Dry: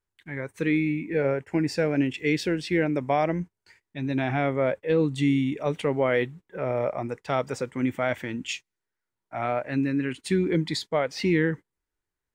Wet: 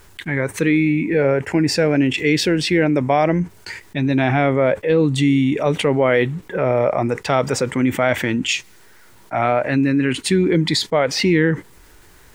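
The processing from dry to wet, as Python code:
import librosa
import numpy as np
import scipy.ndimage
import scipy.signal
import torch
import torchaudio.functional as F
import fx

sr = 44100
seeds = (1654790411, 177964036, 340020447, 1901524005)

y = fx.env_flatten(x, sr, amount_pct=50)
y = F.gain(torch.from_numpy(y), 6.0).numpy()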